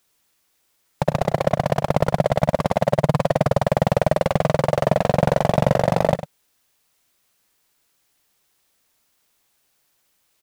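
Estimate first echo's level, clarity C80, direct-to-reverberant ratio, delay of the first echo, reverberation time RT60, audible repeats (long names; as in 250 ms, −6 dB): −14.0 dB, no reverb audible, no reverb audible, 60 ms, no reverb audible, 2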